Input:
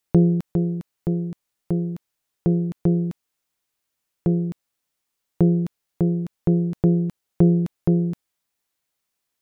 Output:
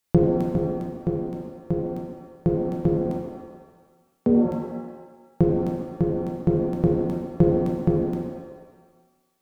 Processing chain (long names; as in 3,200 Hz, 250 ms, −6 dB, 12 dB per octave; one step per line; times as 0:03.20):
0:03.09–0:04.45: frequency shifter +65 Hz
reverb with rising layers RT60 1.2 s, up +7 semitones, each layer −8 dB, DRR −0.5 dB